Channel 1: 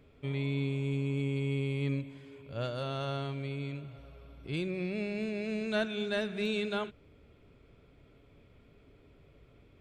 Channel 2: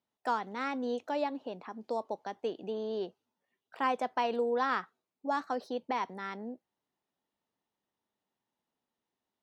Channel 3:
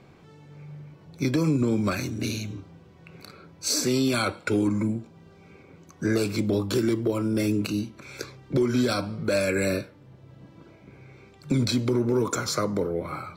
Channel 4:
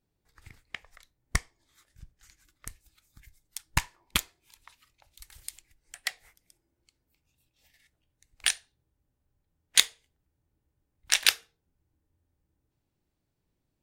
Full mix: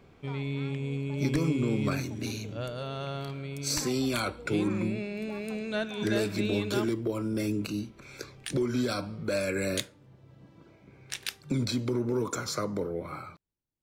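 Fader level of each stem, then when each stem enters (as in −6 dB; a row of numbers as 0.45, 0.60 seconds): −0.5, −17.0, −5.5, −13.5 decibels; 0.00, 0.00, 0.00, 0.00 seconds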